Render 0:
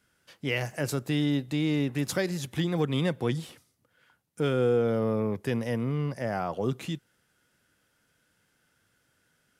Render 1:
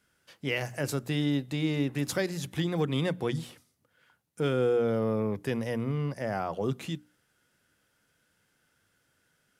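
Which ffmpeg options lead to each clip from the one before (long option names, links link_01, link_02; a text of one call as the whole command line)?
ffmpeg -i in.wav -af "bandreject=frequency=60:width_type=h:width=6,bandreject=frequency=120:width_type=h:width=6,bandreject=frequency=180:width_type=h:width=6,bandreject=frequency=240:width_type=h:width=6,bandreject=frequency=300:width_type=h:width=6,volume=-1dB" out.wav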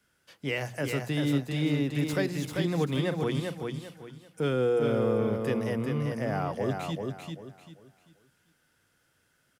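ffmpeg -i in.wav -filter_complex "[0:a]acrossover=split=200|1600|2700[link_01][link_02][link_03][link_04];[link_04]asoftclip=type=tanh:threshold=-39dB[link_05];[link_01][link_02][link_03][link_05]amix=inputs=4:normalize=0,aecho=1:1:392|784|1176|1568:0.596|0.173|0.0501|0.0145" out.wav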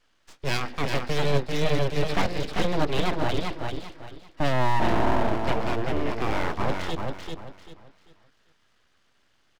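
ffmpeg -i in.wav -af "aresample=11025,aresample=44100,aeval=exprs='abs(val(0))':channel_layout=same,volume=6.5dB" out.wav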